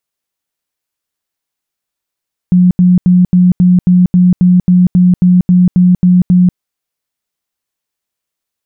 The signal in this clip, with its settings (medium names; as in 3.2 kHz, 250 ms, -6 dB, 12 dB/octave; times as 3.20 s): tone bursts 180 Hz, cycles 34, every 0.27 s, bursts 15, -3.5 dBFS